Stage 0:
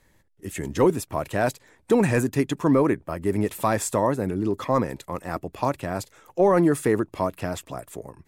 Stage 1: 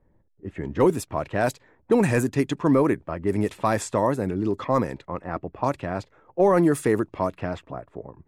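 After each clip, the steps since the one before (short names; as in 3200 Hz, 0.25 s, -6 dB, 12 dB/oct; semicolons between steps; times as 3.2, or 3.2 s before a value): low-pass opened by the level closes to 720 Hz, open at -18 dBFS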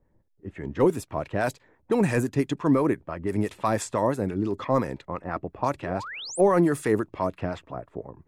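in parallel at +1.5 dB: vocal rider within 5 dB 2 s; on the sum: harmonic tremolo 5.9 Hz, depth 50%, crossover 760 Hz; painted sound rise, 5.82–6.41, 290–11000 Hz -30 dBFS; gain -7 dB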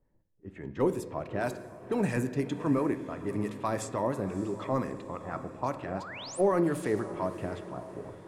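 diffused feedback echo 0.613 s, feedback 49%, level -14 dB; on a send at -10.5 dB: reverb RT60 1.4 s, pre-delay 3 ms; on the sum: gain -6.5 dB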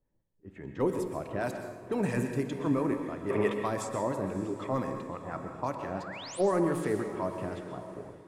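spectral gain 3.3–3.53, 340–3700 Hz +12 dB; plate-style reverb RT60 0.67 s, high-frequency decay 0.95×, pre-delay 0.11 s, DRR 7 dB; AGC gain up to 5 dB; gain -6.5 dB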